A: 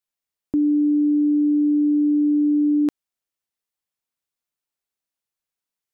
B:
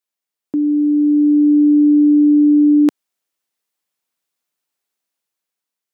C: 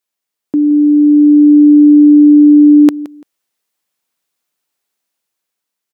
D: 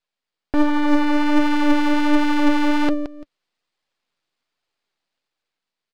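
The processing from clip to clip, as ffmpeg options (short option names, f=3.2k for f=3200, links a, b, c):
-af "highpass=170,dynaudnorm=f=310:g=7:m=6dB,volume=2dB"
-af "aecho=1:1:170|340:0.133|0.0307,volume=5.5dB"
-af "aresample=11025,asoftclip=type=hard:threshold=-15dB,aresample=44100,flanger=delay=1.1:depth=5.3:regen=57:speed=1.3:shape=triangular,aeval=exprs='max(val(0),0)':c=same,volume=7.5dB"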